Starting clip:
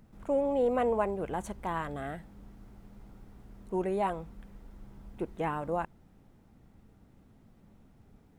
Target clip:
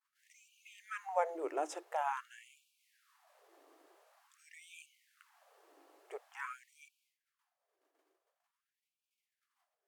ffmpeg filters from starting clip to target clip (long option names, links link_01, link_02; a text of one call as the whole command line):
ffmpeg -i in.wav -af "equalizer=frequency=180:width=1.1:gain=-9,agate=range=-33dB:threshold=-52dB:ratio=3:detection=peak,asetrate=37485,aresample=44100,bandreject=frequency=50:width_type=h:width=6,bandreject=frequency=100:width_type=h:width=6,bandreject=frequency=150:width_type=h:width=6,bandreject=frequency=200:width_type=h:width=6,bandreject=frequency=250:width_type=h:width=6,bandreject=frequency=300:width_type=h:width=6,bandreject=frequency=350:width_type=h:width=6,afftfilt=real='re*gte(b*sr/1024,270*pow(2300/270,0.5+0.5*sin(2*PI*0.47*pts/sr)))':imag='im*gte(b*sr/1024,270*pow(2300/270,0.5+0.5*sin(2*PI*0.47*pts/sr)))':win_size=1024:overlap=0.75" out.wav